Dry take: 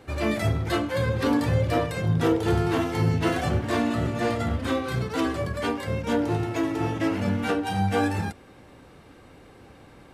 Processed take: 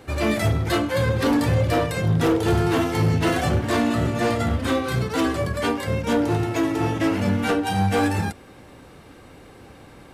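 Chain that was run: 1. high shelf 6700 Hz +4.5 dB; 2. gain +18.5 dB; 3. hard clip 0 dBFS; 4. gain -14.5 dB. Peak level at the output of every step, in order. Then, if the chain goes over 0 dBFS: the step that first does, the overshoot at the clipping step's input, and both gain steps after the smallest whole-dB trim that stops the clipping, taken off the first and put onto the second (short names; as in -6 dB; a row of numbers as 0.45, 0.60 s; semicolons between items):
-11.5, +7.0, 0.0, -14.5 dBFS; step 2, 7.0 dB; step 2 +11.5 dB, step 4 -7.5 dB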